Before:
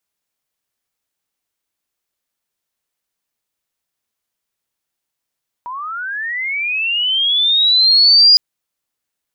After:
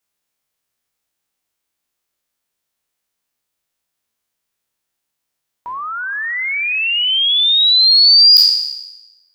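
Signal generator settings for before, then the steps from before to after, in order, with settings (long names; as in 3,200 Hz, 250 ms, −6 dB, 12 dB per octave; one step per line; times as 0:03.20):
glide linear 950 Hz → 4,900 Hz −24 dBFS → −4.5 dBFS 2.71 s
peak hold with a decay on every bin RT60 1.03 s
gain into a clipping stage and back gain 4 dB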